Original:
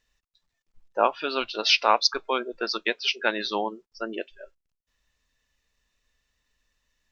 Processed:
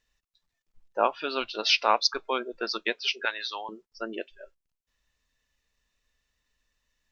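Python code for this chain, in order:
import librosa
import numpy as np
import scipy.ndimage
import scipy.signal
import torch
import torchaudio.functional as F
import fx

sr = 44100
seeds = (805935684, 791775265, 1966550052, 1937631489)

y = fx.highpass(x, sr, hz=1000.0, slope=12, at=(3.25, 3.69))
y = y * librosa.db_to_amplitude(-2.5)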